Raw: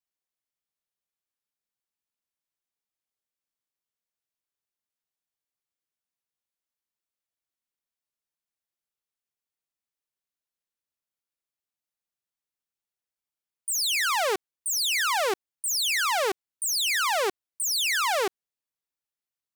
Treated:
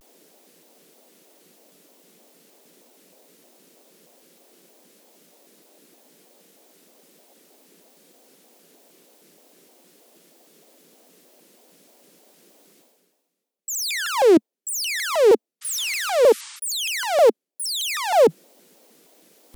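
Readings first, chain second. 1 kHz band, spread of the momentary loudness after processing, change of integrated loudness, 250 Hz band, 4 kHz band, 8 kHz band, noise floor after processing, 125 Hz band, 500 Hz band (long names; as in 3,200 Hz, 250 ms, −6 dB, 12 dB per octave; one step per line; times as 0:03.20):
+2.5 dB, 10 LU, +4.5 dB, +18.5 dB, −0.5 dB, 0.0 dB, −80 dBFS, can't be measured, +14.0 dB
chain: sound drawn into the spectrogram noise, 0:15.60–0:16.59, 980–11,000 Hz −42 dBFS
Butterworth high-pass 190 Hz 72 dB per octave
reversed playback
upward compression, threshold −29 dBFS
reversed playback
low shelf with overshoot 760 Hz +12.5 dB, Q 1.5
pitch modulation by a square or saw wave square 3.2 Hz, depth 250 cents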